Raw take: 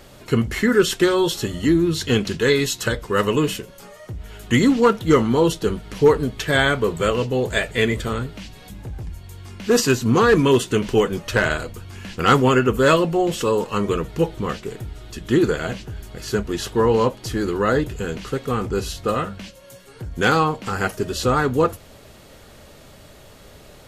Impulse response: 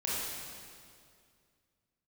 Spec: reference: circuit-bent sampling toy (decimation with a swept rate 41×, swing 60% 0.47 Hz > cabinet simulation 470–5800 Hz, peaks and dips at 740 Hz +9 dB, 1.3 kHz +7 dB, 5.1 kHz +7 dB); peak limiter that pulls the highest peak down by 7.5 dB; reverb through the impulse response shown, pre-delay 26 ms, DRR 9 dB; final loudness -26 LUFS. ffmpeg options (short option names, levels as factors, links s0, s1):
-filter_complex "[0:a]alimiter=limit=0.237:level=0:latency=1,asplit=2[s0][s1];[1:a]atrim=start_sample=2205,adelay=26[s2];[s1][s2]afir=irnorm=-1:irlink=0,volume=0.168[s3];[s0][s3]amix=inputs=2:normalize=0,acrusher=samples=41:mix=1:aa=0.000001:lfo=1:lforange=24.6:lforate=0.47,highpass=470,equalizer=f=740:t=q:w=4:g=9,equalizer=f=1300:t=q:w=4:g=7,equalizer=f=5100:t=q:w=4:g=7,lowpass=f=5800:w=0.5412,lowpass=f=5800:w=1.3066,volume=0.794"